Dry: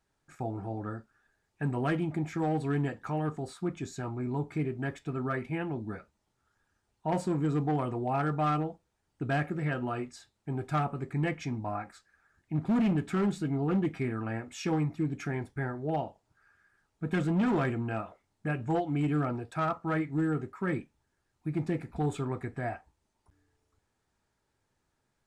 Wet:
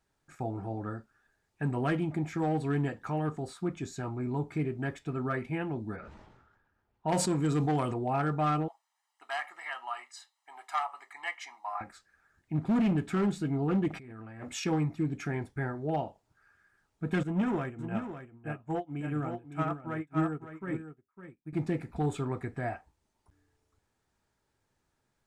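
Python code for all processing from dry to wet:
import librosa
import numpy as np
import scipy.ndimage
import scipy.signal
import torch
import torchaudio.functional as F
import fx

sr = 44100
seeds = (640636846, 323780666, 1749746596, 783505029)

y = fx.chain(x, sr, fx.env_lowpass(base_hz=1500.0, full_db=-27.0),
    fx.high_shelf(hz=2600.0, db=10.0),
    fx.sustainer(db_per_s=44.0), at=(5.96, 7.94))
y = fx.chain(y, sr, fx.highpass(hz=760.0, slope=24),
    fx.comb(ms=1.0, depth=0.69), at=(8.68, 11.81))
y = fx.chain(y, sr, fx.over_compress(threshold_db=-42.0, ratio=-1.0),
    fx.transformer_sat(knee_hz=580.0), at=(13.88, 14.64))
y = fx.chain(y, sr, fx.peak_eq(hz=4400.0, db=-13.0, octaves=0.38),
    fx.echo_single(ms=555, db=-4.0),
    fx.upward_expand(threshold_db=-45.0, expansion=2.5), at=(17.23, 21.53))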